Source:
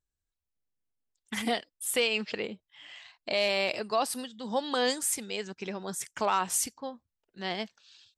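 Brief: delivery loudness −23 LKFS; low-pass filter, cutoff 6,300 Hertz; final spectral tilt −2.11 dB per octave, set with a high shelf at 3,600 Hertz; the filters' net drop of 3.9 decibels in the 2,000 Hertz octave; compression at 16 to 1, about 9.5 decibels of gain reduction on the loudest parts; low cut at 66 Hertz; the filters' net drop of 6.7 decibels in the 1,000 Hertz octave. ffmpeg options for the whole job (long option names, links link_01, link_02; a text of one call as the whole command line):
ffmpeg -i in.wav -af "highpass=66,lowpass=6300,equalizer=frequency=1000:width_type=o:gain=-8.5,equalizer=frequency=2000:width_type=o:gain=-6.5,highshelf=frequency=3600:gain=8.5,acompressor=threshold=-33dB:ratio=16,volume=15.5dB" out.wav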